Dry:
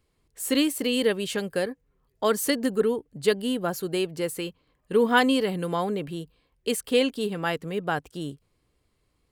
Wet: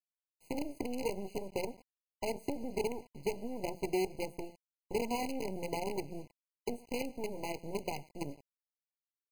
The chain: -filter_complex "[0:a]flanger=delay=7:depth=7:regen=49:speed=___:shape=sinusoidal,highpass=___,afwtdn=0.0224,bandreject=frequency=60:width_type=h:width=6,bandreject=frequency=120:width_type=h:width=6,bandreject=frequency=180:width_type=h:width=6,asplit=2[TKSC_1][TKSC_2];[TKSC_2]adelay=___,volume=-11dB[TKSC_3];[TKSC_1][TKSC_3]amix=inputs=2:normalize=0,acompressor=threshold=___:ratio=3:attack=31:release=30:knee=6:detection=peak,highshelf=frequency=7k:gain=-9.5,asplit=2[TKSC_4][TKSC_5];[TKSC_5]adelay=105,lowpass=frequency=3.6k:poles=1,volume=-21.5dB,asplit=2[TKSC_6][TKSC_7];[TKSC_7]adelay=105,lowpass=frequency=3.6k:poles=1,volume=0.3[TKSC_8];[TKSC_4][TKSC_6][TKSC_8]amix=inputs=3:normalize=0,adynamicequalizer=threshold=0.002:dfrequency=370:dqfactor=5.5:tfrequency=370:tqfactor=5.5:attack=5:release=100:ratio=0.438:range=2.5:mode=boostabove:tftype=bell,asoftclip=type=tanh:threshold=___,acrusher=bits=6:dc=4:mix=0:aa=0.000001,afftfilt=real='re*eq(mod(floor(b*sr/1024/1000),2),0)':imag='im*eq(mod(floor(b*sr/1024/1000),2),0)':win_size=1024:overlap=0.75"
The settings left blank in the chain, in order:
0.69, 42, 21, -39dB, -25dB